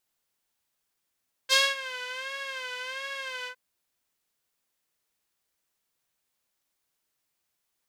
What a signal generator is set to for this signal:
subtractive patch with vibrato C5, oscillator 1 saw, oscillator 2 saw, interval +19 semitones, sub −29 dB, noise −16 dB, filter bandpass, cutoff 1,600 Hz, Q 1.3, filter envelope 1.5 octaves, attack 38 ms, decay 0.22 s, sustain −18.5 dB, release 0.08 s, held 1.98 s, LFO 1.4 Hz, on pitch 85 cents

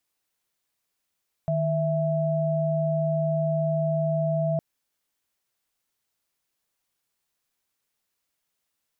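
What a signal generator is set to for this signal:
held notes D#3/E5 sine, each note −24.5 dBFS 3.11 s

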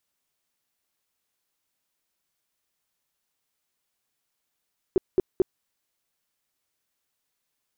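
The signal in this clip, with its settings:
tone bursts 373 Hz, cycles 7, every 0.22 s, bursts 3, −15 dBFS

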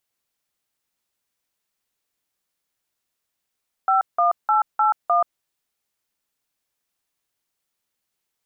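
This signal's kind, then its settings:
touch tones "51881", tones 131 ms, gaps 173 ms, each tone −17.5 dBFS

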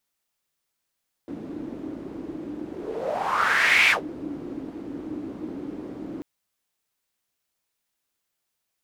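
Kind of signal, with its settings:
pass-by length 4.94 s, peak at 0:02.62, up 1.34 s, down 0.13 s, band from 300 Hz, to 2,300 Hz, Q 5.4, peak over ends 17.5 dB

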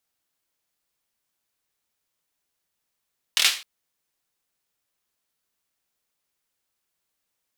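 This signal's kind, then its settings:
synth clap length 0.26 s, bursts 4, apart 25 ms, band 3,200 Hz, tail 0.35 s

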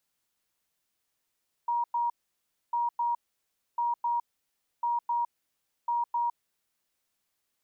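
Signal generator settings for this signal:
beeps in groups sine 949 Hz, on 0.16 s, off 0.10 s, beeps 2, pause 0.63 s, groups 5, −25 dBFS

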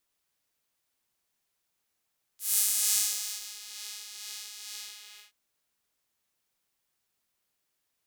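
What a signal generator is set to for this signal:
subtractive patch with tremolo G#4, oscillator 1 saw, interval 0 semitones, detune 28 cents, oscillator 2 level −3 dB, sub −5 dB, filter highpass, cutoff 2,700 Hz, Q 1.1, filter envelope 2 octaves, filter decay 1.23 s, attack 198 ms, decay 0.81 s, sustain −23 dB, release 0.58 s, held 2.35 s, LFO 2.2 Hz, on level 4.5 dB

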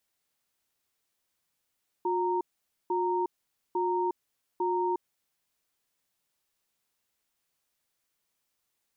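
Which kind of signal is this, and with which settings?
tone pair in a cadence 359 Hz, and 927 Hz, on 0.36 s, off 0.49 s, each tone −28 dBFS 3.01 s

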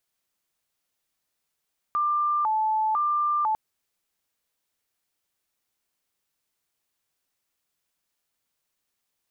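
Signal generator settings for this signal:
siren hi-lo 870–1,190 Hz 1 per second sine −21 dBFS 1.60 s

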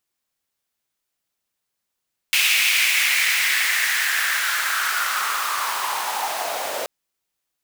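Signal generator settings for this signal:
filter sweep on noise pink, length 4.53 s highpass, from 2,500 Hz, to 560 Hz, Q 4, linear, gain ramp −10 dB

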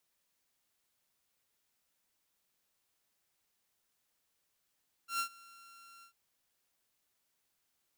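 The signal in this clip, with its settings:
note with an ADSR envelope saw 1,370 Hz, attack 115 ms, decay 88 ms, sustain −24 dB, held 0.95 s, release 96 ms −28 dBFS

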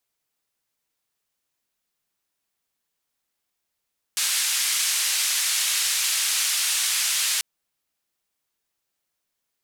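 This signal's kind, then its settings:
band-limited noise 2,000–10,000 Hz, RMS −23.5 dBFS 3.24 s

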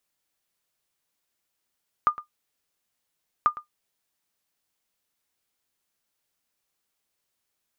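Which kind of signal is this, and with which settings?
ping with an echo 1,210 Hz, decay 0.12 s, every 1.39 s, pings 2, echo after 0.11 s, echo −17 dB −10.5 dBFS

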